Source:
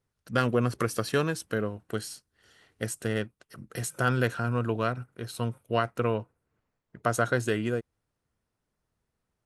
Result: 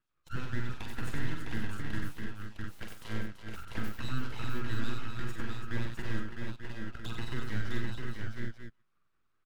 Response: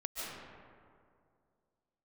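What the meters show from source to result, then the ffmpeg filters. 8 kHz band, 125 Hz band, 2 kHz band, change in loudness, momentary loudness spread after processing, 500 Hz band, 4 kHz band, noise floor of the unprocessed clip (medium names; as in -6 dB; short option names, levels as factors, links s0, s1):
-15.0 dB, -6.0 dB, -7.0 dB, -10.0 dB, 7 LU, -17.5 dB, -5.5 dB, -83 dBFS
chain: -filter_complex "[0:a]afftfilt=real='real(if(lt(b,1008),b+24*(1-2*mod(floor(b/24),2)),b),0)':imag='imag(if(lt(b,1008),b+24*(1-2*mod(floor(b/24),2)),b),0)':win_size=2048:overlap=0.75,acrossover=split=460 3100:gain=0.1 1 0.2[s0][s1][s2];[s0][s1][s2]amix=inputs=3:normalize=0,asplit=2[s3][s4];[s4]adelay=128.3,volume=0.0355,highshelf=f=4000:g=-2.89[s5];[s3][s5]amix=inputs=2:normalize=0,alimiter=limit=0.0668:level=0:latency=1:release=12,acrossover=split=1600[s6][s7];[s6]aeval=exprs='val(0)*(1-1/2+1/2*cos(2*PI*5*n/s))':c=same[s8];[s7]aeval=exprs='val(0)*(1-1/2-1/2*cos(2*PI*5*n/s))':c=same[s9];[s8][s9]amix=inputs=2:normalize=0,aeval=exprs='abs(val(0))':c=same,acrossover=split=430[s10][s11];[s11]acompressor=threshold=0.00282:ratio=4[s12];[s10][s12]amix=inputs=2:normalize=0,asplit=2[s13][s14];[s14]aecho=0:1:44|94|334|657|707|888:0.501|0.501|0.376|0.562|0.473|0.299[s15];[s13][s15]amix=inputs=2:normalize=0,volume=2"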